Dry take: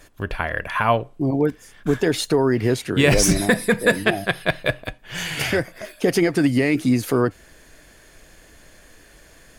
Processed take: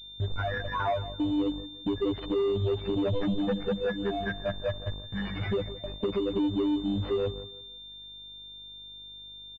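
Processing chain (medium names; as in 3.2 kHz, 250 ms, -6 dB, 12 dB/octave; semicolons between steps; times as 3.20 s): spectral contrast enhancement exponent 3.7; robot voice 99.6 Hz; in parallel at -7.5 dB: bit crusher 7-bit; on the sum: mains buzz 50 Hz, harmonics 24, -39 dBFS -7 dB/octave; gate with hold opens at -25 dBFS; compression 3:1, threshold -23 dBFS, peak gain reduction 10 dB; saturation -22.5 dBFS, distortion -13 dB; on a send: feedback delay 168 ms, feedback 30%, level -15 dB; on the sum: class-D stage that switches slowly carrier 3.6 kHz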